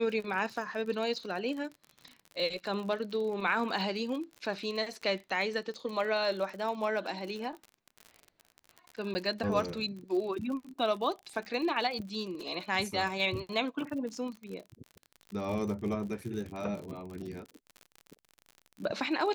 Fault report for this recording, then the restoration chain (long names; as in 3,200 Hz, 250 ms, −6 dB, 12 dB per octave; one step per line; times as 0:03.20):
surface crackle 51 per second −38 dBFS
0:09.14–0:09.15: drop-out 10 ms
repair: click removal
repair the gap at 0:09.14, 10 ms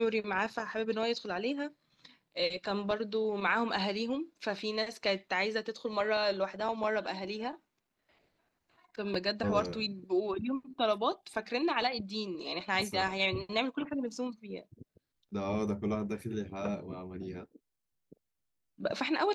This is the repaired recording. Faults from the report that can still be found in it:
none of them is left